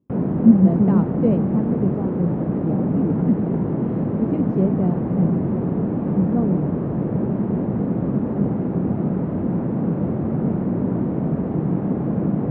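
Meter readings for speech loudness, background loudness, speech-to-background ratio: -22.0 LUFS, -22.5 LUFS, 0.5 dB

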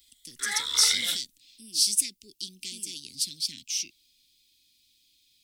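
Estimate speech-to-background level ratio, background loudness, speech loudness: 1.5 dB, -28.5 LUFS, -27.0 LUFS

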